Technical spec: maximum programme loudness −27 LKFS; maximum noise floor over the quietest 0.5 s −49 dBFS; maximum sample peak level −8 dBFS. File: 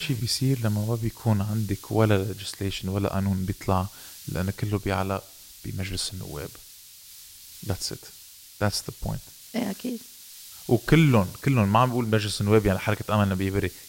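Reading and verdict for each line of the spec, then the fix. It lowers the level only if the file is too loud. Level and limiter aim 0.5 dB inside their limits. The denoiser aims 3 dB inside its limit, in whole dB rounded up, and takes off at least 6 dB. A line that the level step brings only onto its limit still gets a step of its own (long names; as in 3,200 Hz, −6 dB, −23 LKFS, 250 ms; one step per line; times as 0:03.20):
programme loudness −26.0 LKFS: out of spec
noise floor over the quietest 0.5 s −48 dBFS: out of spec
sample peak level −5.5 dBFS: out of spec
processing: level −1.5 dB
brickwall limiter −8.5 dBFS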